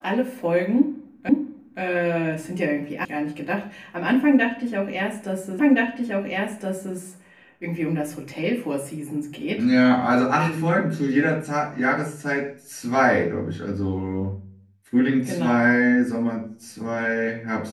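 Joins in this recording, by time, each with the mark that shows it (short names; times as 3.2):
1.29 repeat of the last 0.52 s
3.05 sound cut off
5.59 repeat of the last 1.37 s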